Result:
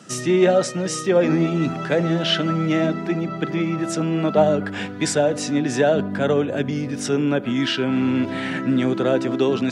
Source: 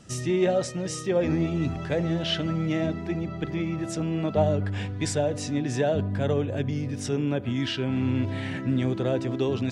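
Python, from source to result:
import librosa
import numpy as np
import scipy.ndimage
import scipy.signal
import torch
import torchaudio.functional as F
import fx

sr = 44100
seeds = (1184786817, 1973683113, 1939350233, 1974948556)

y = scipy.signal.sosfilt(scipy.signal.butter(4, 160.0, 'highpass', fs=sr, output='sos'), x)
y = fx.peak_eq(y, sr, hz=1400.0, db=6.0, octaves=0.4)
y = y * 10.0 ** (7.0 / 20.0)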